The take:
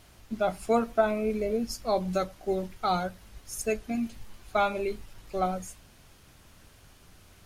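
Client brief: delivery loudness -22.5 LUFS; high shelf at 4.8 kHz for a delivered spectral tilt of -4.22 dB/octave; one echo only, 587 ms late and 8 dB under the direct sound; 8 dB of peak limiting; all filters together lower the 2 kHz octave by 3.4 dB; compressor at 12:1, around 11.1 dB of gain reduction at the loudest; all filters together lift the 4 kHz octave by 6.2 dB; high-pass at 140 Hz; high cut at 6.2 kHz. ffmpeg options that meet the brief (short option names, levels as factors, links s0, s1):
-af "highpass=140,lowpass=6200,equalizer=f=2000:t=o:g=-8.5,equalizer=f=4000:t=o:g=5.5,highshelf=f=4800:g=9,acompressor=threshold=0.0316:ratio=12,alimiter=level_in=1.5:limit=0.0631:level=0:latency=1,volume=0.668,aecho=1:1:587:0.398,volume=5.96"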